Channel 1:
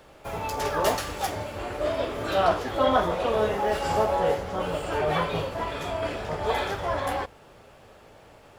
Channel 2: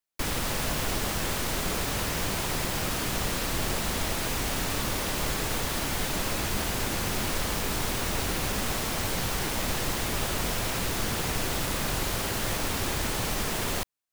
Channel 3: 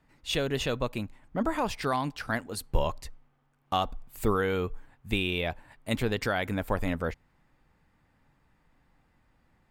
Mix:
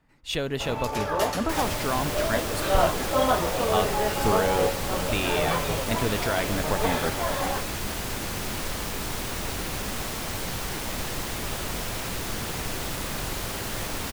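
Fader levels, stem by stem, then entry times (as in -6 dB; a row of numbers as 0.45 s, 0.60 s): -1.0 dB, -2.0 dB, +0.5 dB; 0.35 s, 1.30 s, 0.00 s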